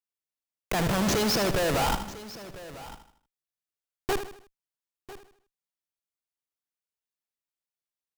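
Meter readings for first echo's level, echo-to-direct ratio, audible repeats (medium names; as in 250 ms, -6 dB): -10.0 dB, -8.5 dB, 7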